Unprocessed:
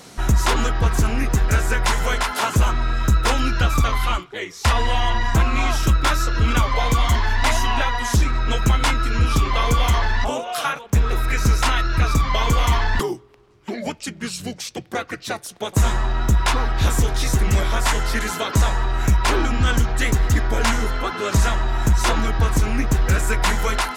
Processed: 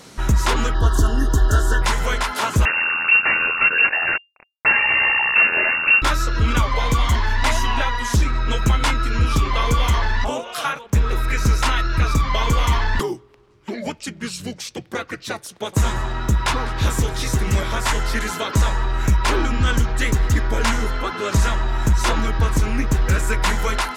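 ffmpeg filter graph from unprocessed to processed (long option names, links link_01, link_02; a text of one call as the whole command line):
ffmpeg -i in.wav -filter_complex "[0:a]asettb=1/sr,asplit=3[link_01][link_02][link_03];[link_01]atrim=end=0.744[link_04];[link_02]atrim=start=0.74:end=1.82,asetpts=PTS-STARTPTS,afade=type=in:duration=0.004:curve=qsin,afade=type=out:start_time=1.076:duration=0.004:curve=qsin,asuperstop=centerf=2300:order=20:qfactor=2.4,aecho=1:1:2.9:0.54,atrim=end_sample=47628[link_05];[link_03]atrim=start=1.816[link_06];[link_04][link_05]acrossfade=duration=0.004:curve1=hsin:curve2=qsin[link_07];[link_07][link_06]acrossfade=duration=0.004:curve1=qsin:curve2=hsin,asettb=1/sr,asplit=3[link_08][link_09][link_10];[link_08]atrim=end=2.654[link_11];[link_09]atrim=start=2.65:end=6.02,asetpts=PTS-STARTPTS,afade=type=in:duration=0.004:curve=qsin,afade=type=out:start_time=3.366:duration=0.004:curve=qsin,equalizer=frequency=300:width=2.3:gain=-8.5,acrusher=bits=2:mix=0:aa=0.5,lowpass=frequency=2400:width_type=q:width=0.5098,lowpass=frequency=2400:width_type=q:width=0.6013,lowpass=frequency=2400:width_type=q:width=0.9,lowpass=frequency=2400:width_type=q:width=2.563,afreqshift=-2800[link_12];[link_10]atrim=start=6.016[link_13];[link_11][link_12]acrossfade=duration=0.004:curve1=hsin:curve2=qsin[link_14];[link_14][link_13]acrossfade=duration=0.004:curve1=qsin:curve2=hsin,asettb=1/sr,asplit=3[link_15][link_16][link_17];[link_15]atrim=end=15.464[link_18];[link_16]atrim=start=15.46:end=17.9,asetpts=PTS-STARTPTS,afade=type=in:duration=0.004:curve=qsin,afade=type=out:start_time=2.436:duration=0.004:curve=qsin,highpass=48,aecho=1:1:202:0.126,atrim=end_sample=107604[link_19];[link_17]atrim=start=17.896[link_20];[link_18][link_19]acrossfade=duration=0.004:curve1=hsin:curve2=qsin[link_21];[link_21][link_20]acrossfade=duration=0.004:curve1=qsin:curve2=hsin,highshelf=frequency=9300:gain=-3.5,bandreject=frequency=720:width=12" out.wav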